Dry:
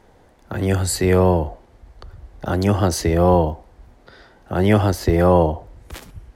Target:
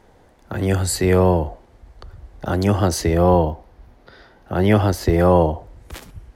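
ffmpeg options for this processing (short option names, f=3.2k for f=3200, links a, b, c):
-filter_complex "[0:a]asettb=1/sr,asplit=3[a][b][c];[a]atrim=end=3.214[d];[b]atrim=start=3.21:end=4.92,asetpts=PTS-STARTPTS,afade=t=in:d=0.004:c=qsin,afade=t=out:st=1.706:d=0.004:c=qsin,equalizer=f=7.9k:w=2.3:g=-7[e];[c]atrim=start=4.916[f];[d][e]acrossfade=d=0.004:c1=hsin:c2=qsin[g];[g][f]acrossfade=d=0.004:c1=qsin:c2=hsin"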